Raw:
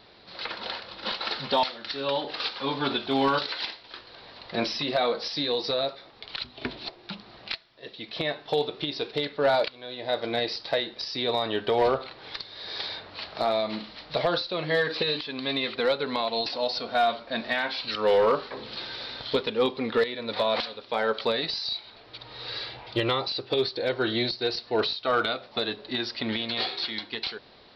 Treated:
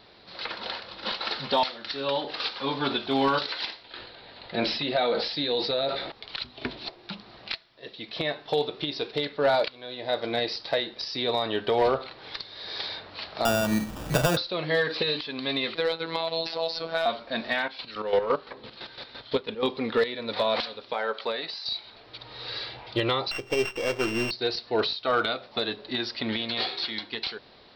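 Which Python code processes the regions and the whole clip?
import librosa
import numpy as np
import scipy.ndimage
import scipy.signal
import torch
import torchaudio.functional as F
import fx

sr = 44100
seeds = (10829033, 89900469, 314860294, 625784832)

y = fx.chain(x, sr, fx.steep_lowpass(hz=4600.0, slope=36),
    fx.notch(hz=1100.0, q=6.8),
    fx.sustainer(db_per_s=50.0), at=(3.84, 6.12))
y = fx.chain(y, sr, fx.bass_treble(bass_db=14, treble_db=-15),
    fx.sample_hold(seeds[0], rate_hz=2100.0, jitter_pct=0),
    fx.band_squash(depth_pct=70), at=(13.45, 14.37))
y = fx.chain(y, sr, fx.robotise(hz=164.0),
    fx.band_squash(depth_pct=70), at=(15.75, 17.06))
y = fx.chain(y, sr, fx.chopper(hz=5.9, depth_pct=65, duty_pct=35),
    fx.air_absorb(metres=93.0), at=(17.62, 19.63))
y = fx.chain(y, sr, fx.highpass(hz=620.0, slope=6),
    fx.high_shelf(hz=4300.0, db=-11.0), at=(20.93, 21.66))
y = fx.chain(y, sr, fx.sample_sort(block=16),
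    fx.resample_linear(factor=4), at=(23.31, 24.31))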